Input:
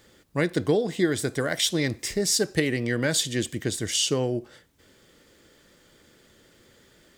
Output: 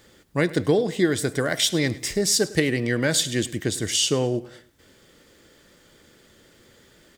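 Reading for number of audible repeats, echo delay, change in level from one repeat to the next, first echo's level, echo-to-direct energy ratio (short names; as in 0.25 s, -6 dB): 3, 0.103 s, -8.0 dB, -19.0 dB, -18.5 dB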